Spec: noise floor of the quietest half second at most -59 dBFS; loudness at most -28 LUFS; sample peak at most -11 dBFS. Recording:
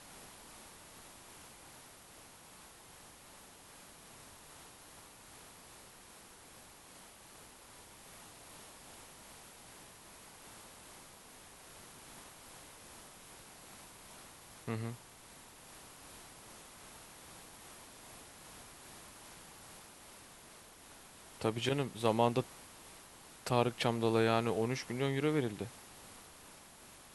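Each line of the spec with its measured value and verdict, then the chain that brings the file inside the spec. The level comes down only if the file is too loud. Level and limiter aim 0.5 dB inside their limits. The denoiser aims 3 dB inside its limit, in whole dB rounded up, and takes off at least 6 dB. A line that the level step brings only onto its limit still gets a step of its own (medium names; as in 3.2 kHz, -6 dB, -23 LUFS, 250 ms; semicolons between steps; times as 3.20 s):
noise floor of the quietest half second -57 dBFS: fail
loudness -34.5 LUFS: pass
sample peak -14.0 dBFS: pass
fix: noise reduction 6 dB, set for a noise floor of -57 dBFS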